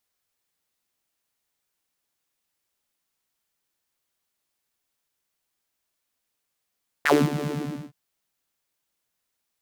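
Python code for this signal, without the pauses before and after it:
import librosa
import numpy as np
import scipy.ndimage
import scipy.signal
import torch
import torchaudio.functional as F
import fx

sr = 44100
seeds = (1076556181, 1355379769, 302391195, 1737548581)

y = fx.sub_patch_wobble(sr, seeds[0], note=50, wave='saw', wave2='saw', interval_st=0, level2_db=-9.0, sub_db=-15.0, noise_db=-30.0, kind='highpass', cutoff_hz=190.0, q=5.5, env_oct=3.0, env_decay_s=0.13, env_sustain_pct=15, attack_ms=13.0, decay_s=0.23, sustain_db=-13, release_s=0.47, note_s=0.4, lfo_hz=9.1, wobble_oct=0.6)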